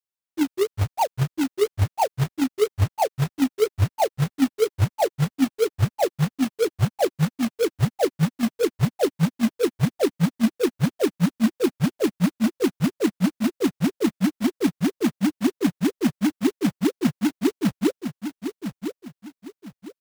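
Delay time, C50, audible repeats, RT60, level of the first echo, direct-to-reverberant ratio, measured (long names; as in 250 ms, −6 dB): 1,006 ms, no reverb audible, 3, no reverb audible, −8.5 dB, no reverb audible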